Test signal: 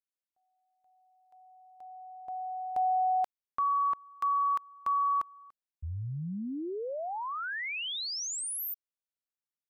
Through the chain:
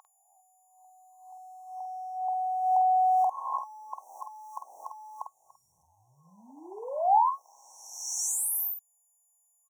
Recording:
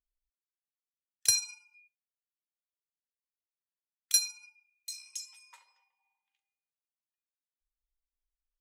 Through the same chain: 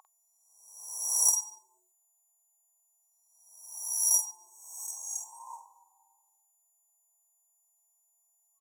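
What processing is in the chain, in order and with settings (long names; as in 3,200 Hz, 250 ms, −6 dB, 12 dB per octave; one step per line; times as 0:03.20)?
peak hold with a rise ahead of every peak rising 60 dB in 0.95 s
steady tone 1,400 Hz −41 dBFS
leveller curve on the samples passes 1
in parallel at −2 dB: downward compressor 16 to 1, threshold −34 dBFS
on the sum: brick-wall band-stop 1,100–5,500 Hz
high-pass with resonance 820 Hz, resonance Q 4.9
double-tracking delay 49 ms −6.5 dB
level −5.5 dB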